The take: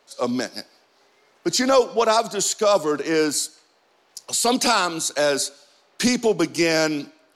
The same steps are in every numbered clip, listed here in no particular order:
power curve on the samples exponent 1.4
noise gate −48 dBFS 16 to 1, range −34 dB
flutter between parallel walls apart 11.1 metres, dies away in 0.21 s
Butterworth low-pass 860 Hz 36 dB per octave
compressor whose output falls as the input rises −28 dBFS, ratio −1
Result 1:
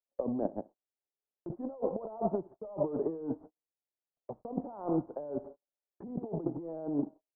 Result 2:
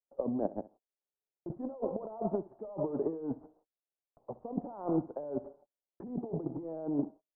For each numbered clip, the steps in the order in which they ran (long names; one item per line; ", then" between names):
flutter between parallel walls, then compressor whose output falls as the input rises, then power curve on the samples, then Butterworth low-pass, then noise gate
compressor whose output falls as the input rises, then power curve on the samples, then flutter between parallel walls, then noise gate, then Butterworth low-pass